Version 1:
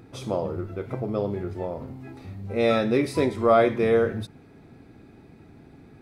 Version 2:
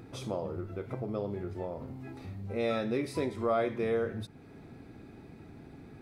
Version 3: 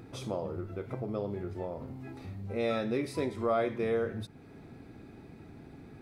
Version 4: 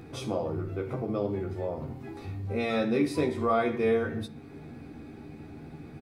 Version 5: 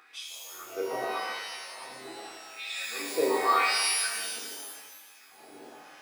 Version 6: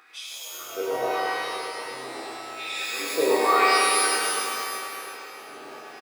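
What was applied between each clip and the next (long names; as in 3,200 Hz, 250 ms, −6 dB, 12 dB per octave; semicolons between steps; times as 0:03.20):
downward compressor 1.5 to 1, threshold −45 dBFS, peak gain reduction 11 dB
level that may rise only so fast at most 400 dB per second
double-tracking delay 13 ms −5 dB; on a send at −5 dB: convolution reverb RT60 0.50 s, pre-delay 3 ms; on the sum: level +2.5 dB
auto-filter high-pass sine 0.85 Hz 460–3,300 Hz; reverb with rising layers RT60 1.4 s, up +12 semitones, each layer −2 dB, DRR −0.5 dB; level −4 dB
on a send: single-tap delay 99 ms −4 dB; on the sum: comb and all-pass reverb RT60 4.9 s, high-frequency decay 0.8×, pre-delay 0 ms, DRR 2 dB; level +2.5 dB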